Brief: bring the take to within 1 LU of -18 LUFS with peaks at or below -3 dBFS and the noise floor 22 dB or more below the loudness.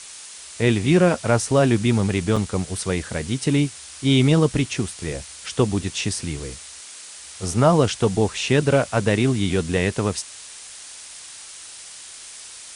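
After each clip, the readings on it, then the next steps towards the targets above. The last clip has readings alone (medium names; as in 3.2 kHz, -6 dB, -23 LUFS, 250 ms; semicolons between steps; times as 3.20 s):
dropouts 1; longest dropout 4.7 ms; noise floor -40 dBFS; noise floor target -43 dBFS; loudness -21.0 LUFS; peak level -5.0 dBFS; loudness target -18.0 LUFS
-> interpolate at 2.36 s, 4.7 ms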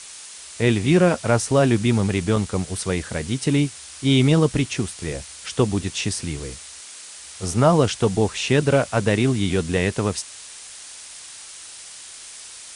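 dropouts 0; noise floor -40 dBFS; noise floor target -43 dBFS
-> noise reduction 6 dB, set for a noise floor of -40 dBFS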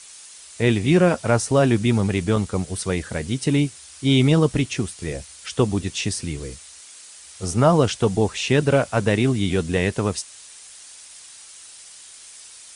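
noise floor -44 dBFS; loudness -21.0 LUFS; peak level -5.0 dBFS; loudness target -18.0 LUFS
-> trim +3 dB; peak limiter -3 dBFS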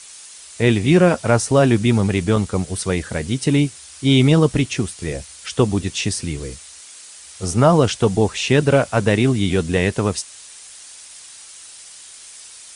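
loudness -18.0 LUFS; peak level -3.0 dBFS; noise floor -41 dBFS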